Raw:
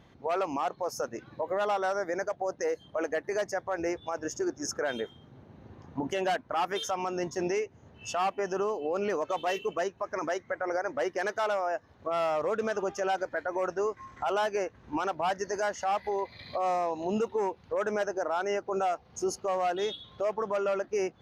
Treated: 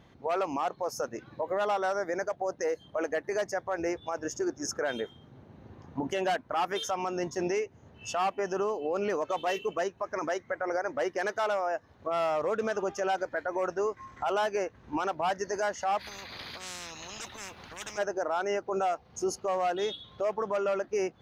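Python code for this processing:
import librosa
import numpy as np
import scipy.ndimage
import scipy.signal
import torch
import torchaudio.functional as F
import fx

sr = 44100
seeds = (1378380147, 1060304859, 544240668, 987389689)

y = fx.spectral_comp(x, sr, ratio=10.0, at=(15.99, 17.97), fade=0.02)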